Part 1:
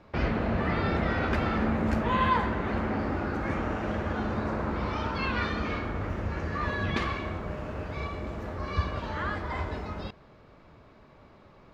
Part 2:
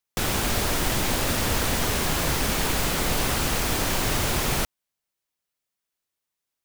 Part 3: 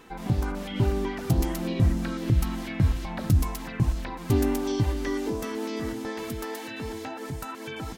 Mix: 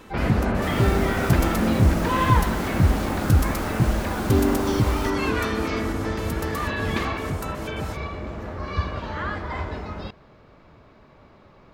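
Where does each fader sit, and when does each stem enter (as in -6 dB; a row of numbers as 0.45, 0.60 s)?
+3.0, -13.5, +3.0 dB; 0.00, 0.45, 0.00 s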